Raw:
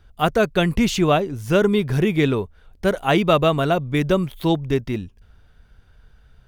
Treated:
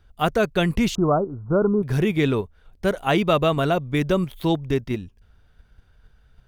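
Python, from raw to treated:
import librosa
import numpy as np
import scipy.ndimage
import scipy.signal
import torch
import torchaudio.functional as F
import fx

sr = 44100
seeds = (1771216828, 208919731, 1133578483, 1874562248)

p1 = fx.steep_lowpass(x, sr, hz=1400.0, slope=96, at=(0.95, 1.83))
p2 = fx.level_steps(p1, sr, step_db=23)
p3 = p1 + (p2 * librosa.db_to_amplitude(-1.5))
y = p3 * librosa.db_to_amplitude(-5.0)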